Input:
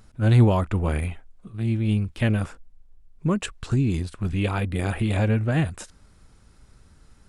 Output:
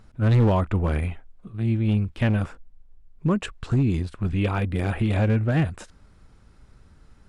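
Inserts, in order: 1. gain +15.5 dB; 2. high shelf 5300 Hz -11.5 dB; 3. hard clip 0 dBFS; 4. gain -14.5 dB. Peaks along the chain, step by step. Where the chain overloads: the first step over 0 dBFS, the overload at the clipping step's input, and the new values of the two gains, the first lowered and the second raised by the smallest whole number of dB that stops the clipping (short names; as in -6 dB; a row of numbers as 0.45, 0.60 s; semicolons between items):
+8.5, +8.5, 0.0, -14.5 dBFS; step 1, 8.5 dB; step 1 +6.5 dB, step 4 -5.5 dB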